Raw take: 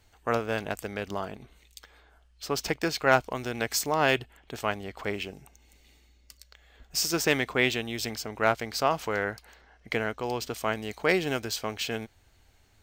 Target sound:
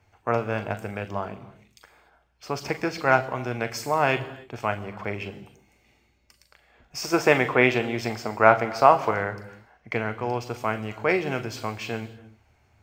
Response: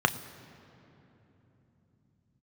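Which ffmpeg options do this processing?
-filter_complex "[0:a]asettb=1/sr,asplit=3[link_01][link_02][link_03];[link_01]atrim=end=7.034[link_04];[link_02]atrim=start=7.03:end=9.11,asetpts=PTS-STARTPTS,afade=type=in:duration=0.004:curve=qsin,afade=type=out:start_time=2.076:duration=0.004:curve=qsin,equalizer=frequency=790:width=0.39:gain=7[link_05];[link_03]atrim=start=9.106[link_06];[link_04][link_05]acrossfade=duration=0.004:curve1=hsin:curve2=qsin[link_07];[link_07][link_06]acrossfade=duration=0.004:curve1=qsin:curve2=hsin[link_08];[1:a]atrim=start_sample=2205,afade=type=out:start_time=0.3:duration=0.01,atrim=end_sample=13671,asetrate=35280,aresample=44100[link_09];[link_08][link_09]afir=irnorm=-1:irlink=0,volume=-13dB"

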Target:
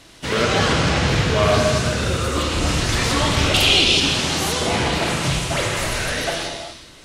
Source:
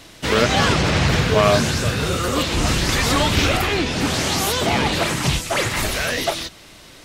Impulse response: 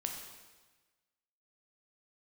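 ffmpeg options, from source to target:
-filter_complex "[0:a]asettb=1/sr,asplit=3[link_01][link_02][link_03];[link_01]atrim=end=3.544[link_04];[link_02]atrim=start=3.54:end=4,asetpts=PTS-STARTPTS,afade=type=in:duration=0.004:curve=qsin,afade=type=out:start_time=0.456:duration=0.004:curve=qsin,highshelf=frequency=2300:width_type=q:width=3:gain=9[link_05];[link_03]atrim=start=3.996[link_06];[link_04][link_05]acrossfade=duration=0.004:curve1=hsin:curve2=qsin[link_07];[link_07][link_06]acrossfade=duration=0.004:curve1=qsin:curve2=hsin[link_08];[1:a]atrim=start_sample=2205,afade=type=out:start_time=0.26:duration=0.01,atrim=end_sample=11907,asetrate=22050,aresample=44100[link_09];[link_08][link_09]afir=irnorm=-1:irlink=0,volume=-6dB"

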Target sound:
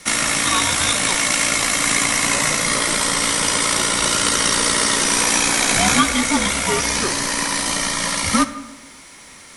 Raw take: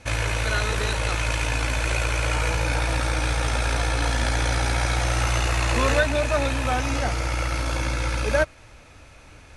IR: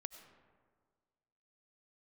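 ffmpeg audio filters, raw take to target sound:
-filter_complex "[0:a]aemphasis=mode=production:type=riaa,asplit=2[link_01][link_02];[1:a]atrim=start_sample=2205,asetrate=66150,aresample=44100[link_03];[link_02][link_03]afir=irnorm=-1:irlink=0,volume=11dB[link_04];[link_01][link_04]amix=inputs=2:normalize=0,afreqshift=-340,volume=-3dB"

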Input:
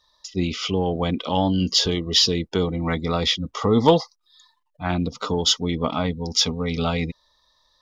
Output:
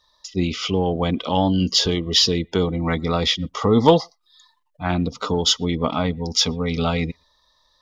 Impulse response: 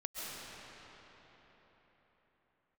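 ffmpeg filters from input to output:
-filter_complex "[0:a]asplit=2[link_01][link_02];[1:a]atrim=start_sample=2205,afade=type=out:start_time=0.17:duration=0.01,atrim=end_sample=7938,lowpass=3500[link_03];[link_02][link_03]afir=irnorm=-1:irlink=0,volume=-14.5dB[link_04];[link_01][link_04]amix=inputs=2:normalize=0,volume=1dB"

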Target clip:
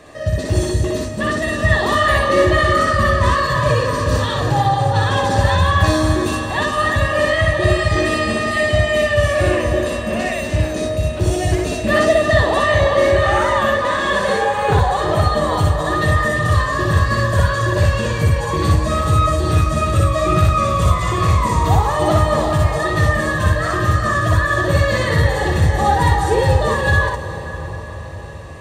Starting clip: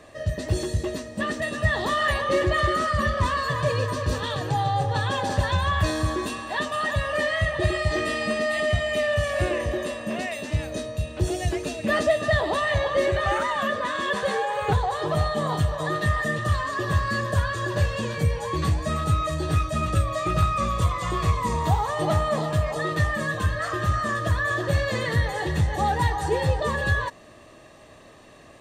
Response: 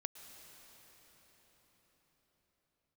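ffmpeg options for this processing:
-filter_complex "[0:a]asplit=2[link_01][link_02];[link_02]equalizer=frequency=3000:width=1.5:gain=-4[link_03];[1:a]atrim=start_sample=2205,adelay=61[link_04];[link_03][link_04]afir=irnorm=-1:irlink=0,volume=3.5dB[link_05];[link_01][link_05]amix=inputs=2:normalize=0,volume=5dB"

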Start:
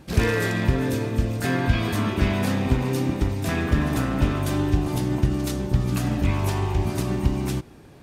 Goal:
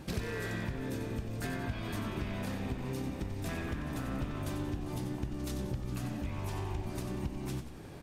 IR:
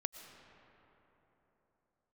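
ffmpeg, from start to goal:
-filter_complex "[0:a]acompressor=threshold=-34dB:ratio=10,asplit=6[link_01][link_02][link_03][link_04][link_05][link_06];[link_02]adelay=92,afreqshift=-64,volume=-8.5dB[link_07];[link_03]adelay=184,afreqshift=-128,volume=-15.6dB[link_08];[link_04]adelay=276,afreqshift=-192,volume=-22.8dB[link_09];[link_05]adelay=368,afreqshift=-256,volume=-29.9dB[link_10];[link_06]adelay=460,afreqshift=-320,volume=-37dB[link_11];[link_01][link_07][link_08][link_09][link_10][link_11]amix=inputs=6:normalize=0"

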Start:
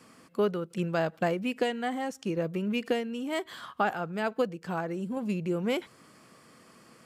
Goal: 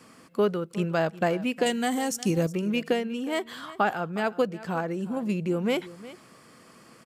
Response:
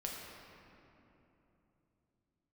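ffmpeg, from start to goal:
-filter_complex "[0:a]asettb=1/sr,asplit=3[link_01][link_02][link_03];[link_01]atrim=end=1.664[link_04];[link_02]atrim=start=1.66:end=2.47,asetpts=PTS-STARTPTS,afade=type=in:duration=0.004:curve=qsin,afade=type=out:start_time=0.806:duration=0.004:curve=qsin,bass=frequency=250:gain=7,treble=frequency=4000:gain=15[link_05];[link_03]atrim=start=2.466[link_06];[link_04][link_05]acrossfade=duration=0.004:curve1=hsin:curve2=qsin[link_07];[link_07][link_06]acrossfade=duration=0.004:curve1=qsin:curve2=hsin,asplit=2[link_08][link_09];[link_09]aecho=0:1:361:0.133[link_10];[link_08][link_10]amix=inputs=2:normalize=0,volume=3dB"

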